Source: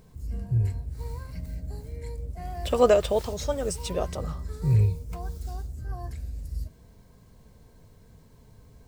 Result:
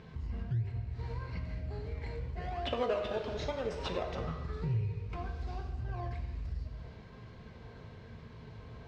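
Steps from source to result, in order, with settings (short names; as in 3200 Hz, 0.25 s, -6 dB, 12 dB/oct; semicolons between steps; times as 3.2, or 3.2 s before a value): HPF 50 Hz; bell 2600 Hz +12 dB 2.8 oct; in parallel at -5.5 dB: decimation with a swept rate 30×, swing 100% 1 Hz; on the sum: air absorption 220 m; reverb, pre-delay 3 ms, DRR 4 dB; compressor 3:1, threshold -37 dBFS, peak gain reduction 21.5 dB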